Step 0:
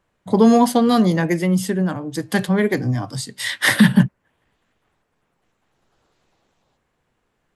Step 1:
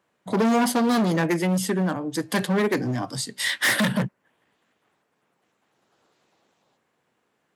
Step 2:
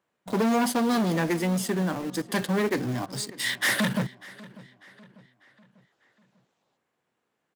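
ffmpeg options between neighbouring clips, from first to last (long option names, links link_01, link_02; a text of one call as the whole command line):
ffmpeg -i in.wav -af "asoftclip=type=hard:threshold=-17dB,highpass=180" out.wav
ffmpeg -i in.wav -filter_complex "[0:a]asplit=2[link_01][link_02];[link_02]acrusher=bits=4:mix=0:aa=0.000001,volume=-5dB[link_03];[link_01][link_03]amix=inputs=2:normalize=0,asplit=2[link_04][link_05];[link_05]adelay=595,lowpass=frequency=4600:poles=1,volume=-20dB,asplit=2[link_06][link_07];[link_07]adelay=595,lowpass=frequency=4600:poles=1,volume=0.48,asplit=2[link_08][link_09];[link_09]adelay=595,lowpass=frequency=4600:poles=1,volume=0.48,asplit=2[link_10][link_11];[link_11]adelay=595,lowpass=frequency=4600:poles=1,volume=0.48[link_12];[link_04][link_06][link_08][link_10][link_12]amix=inputs=5:normalize=0,volume=-7dB" out.wav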